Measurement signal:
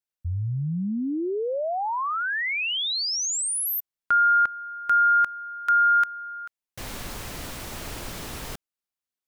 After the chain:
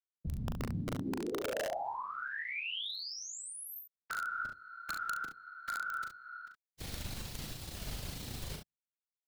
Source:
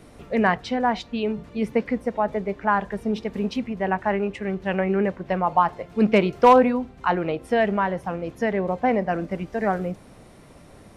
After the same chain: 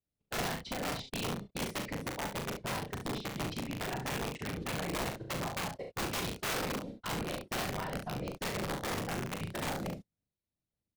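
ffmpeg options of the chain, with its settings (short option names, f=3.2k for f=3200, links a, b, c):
-filter_complex "[0:a]bandreject=f=63.31:t=h:w=4,bandreject=f=126.62:t=h:w=4,bandreject=f=189.93:t=h:w=4,bandreject=f=253.24:t=h:w=4,bandreject=f=316.55:t=h:w=4,bandreject=f=379.86:t=h:w=4,bandreject=f=443.17:t=h:w=4,bandreject=f=506.48:t=h:w=4,agate=range=-43dB:threshold=-38dB:ratio=16:release=40:detection=peak,afftfilt=real='hypot(re,im)*cos(2*PI*random(0))':imag='hypot(re,im)*sin(2*PI*random(1))':win_size=512:overlap=0.75,firequalizer=gain_entry='entry(100,0);entry(270,-5);entry(1100,-12);entry(4000,2);entry(6100,-2)':delay=0.05:min_phase=1,acrossover=split=600|4100[a][b][c];[a]acompressor=threshold=-46dB:ratio=2.5[d];[b]acompressor=threshold=-48dB:ratio=3[e];[c]acompressor=threshold=-42dB:ratio=4[f];[d][e][f]amix=inputs=3:normalize=0,asoftclip=type=hard:threshold=-33.5dB,acrossover=split=2500[g][h];[h]acompressor=threshold=-51dB:ratio=4:attack=1:release=60[i];[g][i]amix=inputs=2:normalize=0,aeval=exprs='(mod(63.1*val(0)+1,2)-1)/63.1':c=same,asplit=2[j][k];[k]aecho=0:1:39|69:0.562|0.398[l];[j][l]amix=inputs=2:normalize=0,volume=6dB"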